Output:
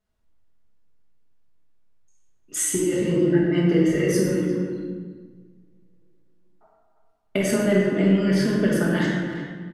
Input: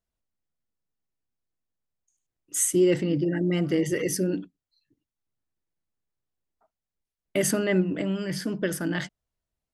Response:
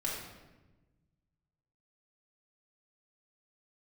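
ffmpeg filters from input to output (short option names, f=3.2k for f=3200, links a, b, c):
-filter_complex "[0:a]aemphasis=mode=reproduction:type=cd,acompressor=threshold=-29dB:ratio=6,asplit=2[a][b];[b]adelay=350,highpass=300,lowpass=3.4k,asoftclip=type=hard:threshold=-29dB,volume=-10dB[c];[a][c]amix=inputs=2:normalize=0[d];[1:a]atrim=start_sample=2205,asetrate=31752,aresample=44100[e];[d][e]afir=irnorm=-1:irlink=0,volume=5.5dB"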